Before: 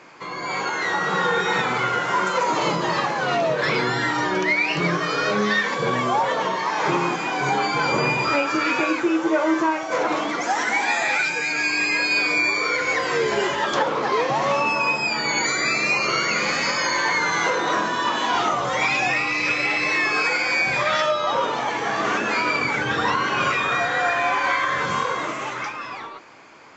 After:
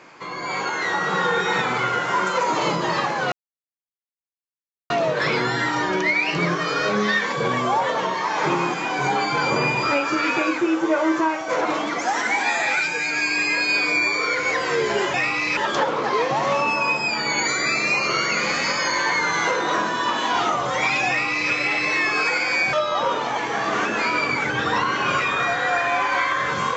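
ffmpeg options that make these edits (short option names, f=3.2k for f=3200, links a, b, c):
-filter_complex "[0:a]asplit=5[a][b][c][d][e];[a]atrim=end=3.32,asetpts=PTS-STARTPTS,afade=t=out:st=3.316:d=0.004:c=hsin,apad=pad_dur=1.58[f];[b]atrim=start=3.32:end=13.562,asetpts=PTS-STARTPTS,afade=t=in:d=0.004:c=hsin[g];[c]atrim=start=19.068:end=19.502[h];[d]atrim=start=13.558:end=20.722[i];[e]atrim=start=21.048[j];[f][g]concat=n=2:v=0:a=1[k];[k][h]acrossfade=d=0.004:c1=hsin:c2=hsin[l];[l][i]acrossfade=d=0.004:c1=hsin:c2=hsin[m];[m][j]acrossfade=d=0.004:c1=hsin:c2=hsin"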